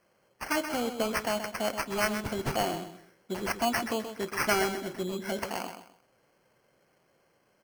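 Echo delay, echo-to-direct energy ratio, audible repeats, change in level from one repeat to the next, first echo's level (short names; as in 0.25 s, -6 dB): 0.128 s, -8.5 dB, 3, -11.5 dB, -9.0 dB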